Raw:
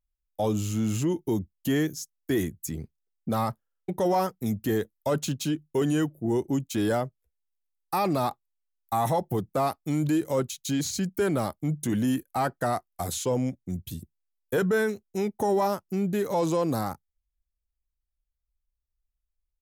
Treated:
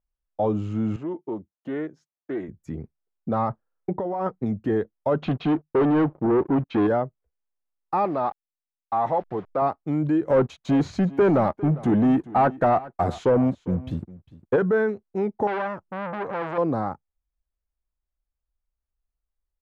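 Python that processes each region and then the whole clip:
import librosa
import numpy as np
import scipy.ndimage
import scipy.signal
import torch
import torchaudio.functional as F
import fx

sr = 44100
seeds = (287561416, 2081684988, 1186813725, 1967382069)

y = fx.chain(x, sr, fx.highpass(hz=610.0, slope=6),
    fx.high_shelf(hz=2300.0, db=-11.5),
    fx.doppler_dist(depth_ms=0.11), at=(0.96, 2.49))
y = fx.chain(y, sr, fx.air_absorb(metres=94.0),
    fx.over_compress(threshold_db=-29.0, ratio=-1.0), at=(3.5, 4.45))
y = fx.chain(y, sr, fx.lowpass(hz=3900.0, slope=24),
    fx.low_shelf(hz=360.0, db=-4.5),
    fx.leveller(passes=3), at=(5.22, 6.87))
y = fx.chain(y, sr, fx.delta_hold(step_db=-40.0),
    fx.lowpass(hz=6500.0, slope=12),
    fx.low_shelf(hz=240.0, db=-11.5), at=(8.05, 9.62))
y = fx.chain(y, sr, fx.leveller(passes=2),
    fx.echo_single(ms=403, db=-19.0), at=(10.27, 14.56))
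y = fx.chain(y, sr, fx.low_shelf(hz=150.0, db=6.5),
    fx.transformer_sat(knee_hz=2100.0), at=(15.47, 16.58))
y = scipy.signal.sosfilt(scipy.signal.butter(2, 1300.0, 'lowpass', fs=sr, output='sos'), y)
y = fx.low_shelf(y, sr, hz=230.0, db=-6.0)
y = y * 10.0 ** (5.0 / 20.0)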